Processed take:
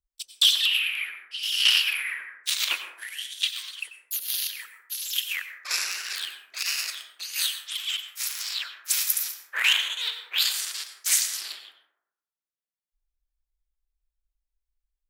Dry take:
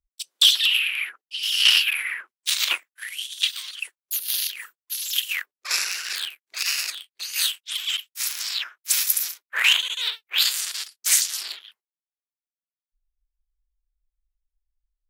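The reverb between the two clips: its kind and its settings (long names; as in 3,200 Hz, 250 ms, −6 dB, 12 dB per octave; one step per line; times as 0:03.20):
dense smooth reverb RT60 0.84 s, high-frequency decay 0.35×, pre-delay 80 ms, DRR 7 dB
level −3.5 dB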